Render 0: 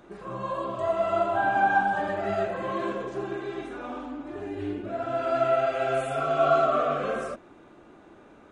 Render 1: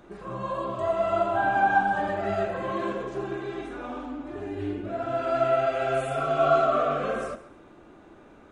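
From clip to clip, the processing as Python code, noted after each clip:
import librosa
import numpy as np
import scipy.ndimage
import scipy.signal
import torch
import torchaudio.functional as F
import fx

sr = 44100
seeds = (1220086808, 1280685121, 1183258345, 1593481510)

y = fx.low_shelf(x, sr, hz=87.0, db=6.5)
y = fx.echo_feedback(y, sr, ms=136, feedback_pct=29, wet_db=-16.0)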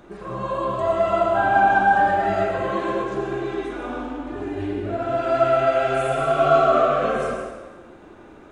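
y = fx.rev_plate(x, sr, seeds[0], rt60_s=1.2, hf_ratio=0.85, predelay_ms=85, drr_db=3.0)
y = y * 10.0 ** (4.0 / 20.0)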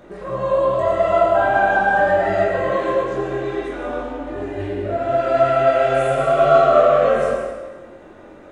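y = fx.doubler(x, sr, ms=22.0, db=-5)
y = fx.small_body(y, sr, hz=(560.0, 1900.0), ring_ms=30, db=10)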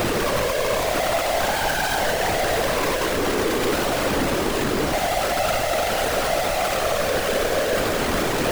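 y = np.sign(x) * np.sqrt(np.mean(np.square(x)))
y = fx.whisperise(y, sr, seeds[1])
y = fx.dmg_noise_colour(y, sr, seeds[2], colour='brown', level_db=-30.0)
y = y * 10.0 ** (-4.0 / 20.0)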